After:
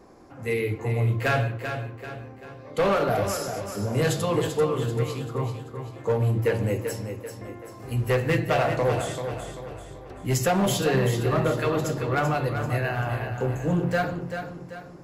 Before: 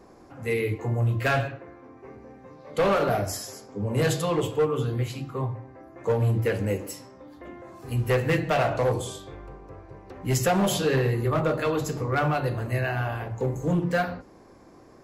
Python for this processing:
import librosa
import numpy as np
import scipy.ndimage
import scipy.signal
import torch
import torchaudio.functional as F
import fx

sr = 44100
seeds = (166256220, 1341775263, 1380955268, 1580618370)

y = fx.echo_feedback(x, sr, ms=388, feedback_pct=43, wet_db=-8.0)